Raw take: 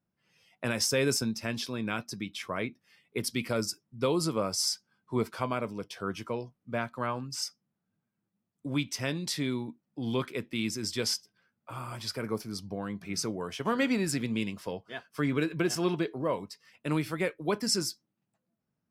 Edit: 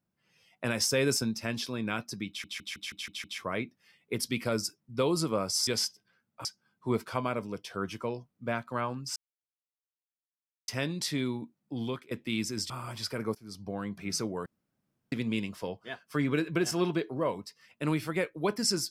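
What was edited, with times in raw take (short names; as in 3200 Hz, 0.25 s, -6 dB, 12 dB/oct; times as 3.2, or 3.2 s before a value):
2.28 stutter 0.16 s, 7 plays
7.42–8.94 mute
9.99–10.37 fade out, to -18 dB
10.96–11.74 move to 4.71
12.39–12.77 fade in, from -21 dB
13.5–14.16 room tone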